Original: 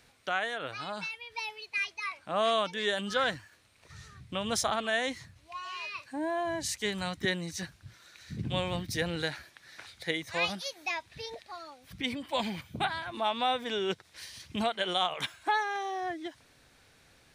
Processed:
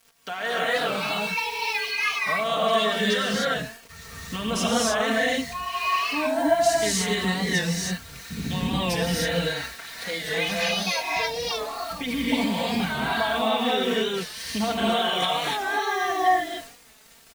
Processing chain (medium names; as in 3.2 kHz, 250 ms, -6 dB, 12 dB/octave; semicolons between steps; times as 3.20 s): de-hum 113.8 Hz, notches 9; bit crusher 9-bit; peak limiter -27 dBFS, peak gain reduction 11.5 dB; comb 4.4 ms, depth 78%; gated-style reverb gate 330 ms rising, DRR -5.5 dB; warped record 45 rpm, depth 100 cents; trim +4.5 dB